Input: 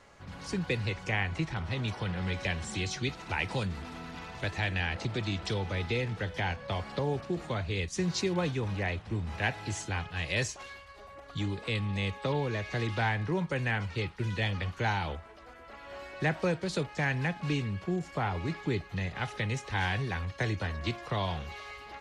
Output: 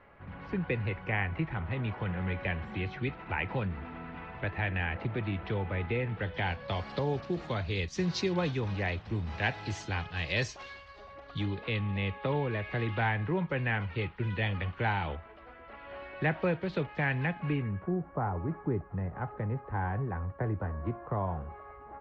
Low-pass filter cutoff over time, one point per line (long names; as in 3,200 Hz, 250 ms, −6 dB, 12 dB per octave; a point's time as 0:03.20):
low-pass filter 24 dB per octave
0:06.01 2,500 Hz
0:06.81 5,400 Hz
0:10.99 5,400 Hz
0:11.87 3,100 Hz
0:17.25 3,100 Hz
0:18.06 1,300 Hz